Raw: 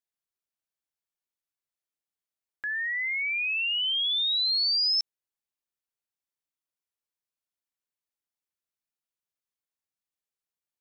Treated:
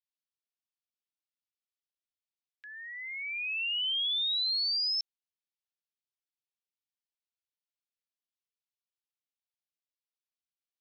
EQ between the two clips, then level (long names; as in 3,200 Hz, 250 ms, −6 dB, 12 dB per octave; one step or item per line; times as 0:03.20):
four-pole ladder high-pass 2,200 Hz, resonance 30%
Butterworth low-pass 6,000 Hz
0.0 dB